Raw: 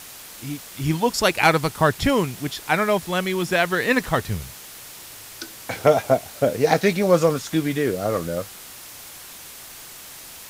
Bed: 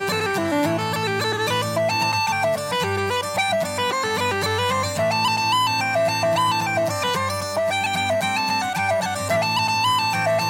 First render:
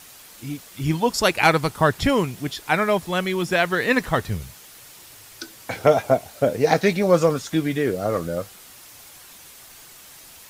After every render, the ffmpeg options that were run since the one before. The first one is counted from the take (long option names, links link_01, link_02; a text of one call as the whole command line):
ffmpeg -i in.wav -af "afftdn=noise_reduction=6:noise_floor=-41" out.wav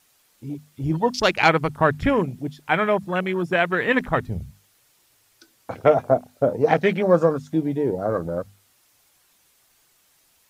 ffmpeg -i in.wav -af "afwtdn=0.0355,bandreject=frequency=50:width_type=h:width=6,bandreject=frequency=100:width_type=h:width=6,bandreject=frequency=150:width_type=h:width=6,bandreject=frequency=200:width_type=h:width=6,bandreject=frequency=250:width_type=h:width=6" out.wav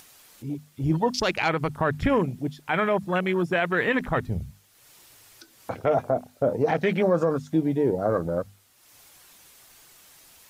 ffmpeg -i in.wav -af "alimiter=limit=-13dB:level=0:latency=1:release=47,acompressor=mode=upward:threshold=-43dB:ratio=2.5" out.wav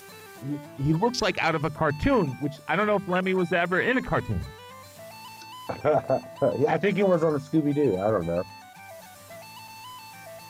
ffmpeg -i in.wav -i bed.wav -filter_complex "[1:a]volume=-23.5dB[link_01];[0:a][link_01]amix=inputs=2:normalize=0" out.wav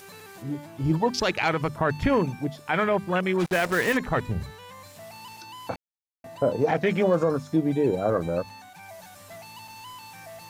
ffmpeg -i in.wav -filter_complex "[0:a]asplit=3[link_01][link_02][link_03];[link_01]afade=type=out:start_time=3.39:duration=0.02[link_04];[link_02]acrusher=bits=4:mix=0:aa=0.5,afade=type=in:start_time=3.39:duration=0.02,afade=type=out:start_time=3.96:duration=0.02[link_05];[link_03]afade=type=in:start_time=3.96:duration=0.02[link_06];[link_04][link_05][link_06]amix=inputs=3:normalize=0,asplit=3[link_07][link_08][link_09];[link_07]atrim=end=5.76,asetpts=PTS-STARTPTS,afade=type=out:start_time=5.756:duration=0.004:curve=hsin[link_10];[link_08]atrim=start=5.76:end=6.24,asetpts=PTS-STARTPTS,volume=0[link_11];[link_09]atrim=start=6.24,asetpts=PTS-STARTPTS,afade=type=in:duration=0.004:curve=hsin[link_12];[link_10][link_11][link_12]concat=n=3:v=0:a=1" out.wav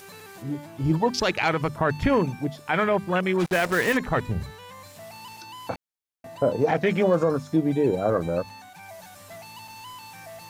ffmpeg -i in.wav -af "volume=1dB" out.wav